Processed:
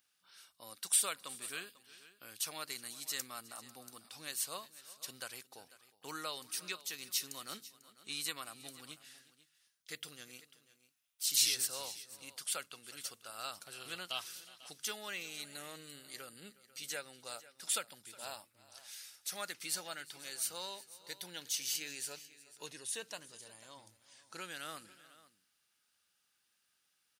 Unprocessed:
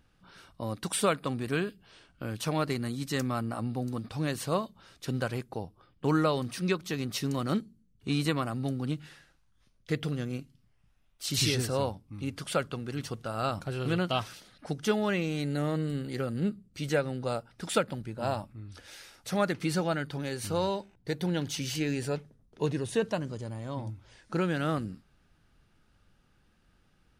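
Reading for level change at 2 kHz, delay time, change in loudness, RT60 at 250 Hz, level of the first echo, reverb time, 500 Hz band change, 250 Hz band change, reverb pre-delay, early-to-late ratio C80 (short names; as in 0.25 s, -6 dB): -8.0 dB, 0.362 s, -7.0 dB, none, -20.0 dB, none, -20.0 dB, -25.5 dB, none, none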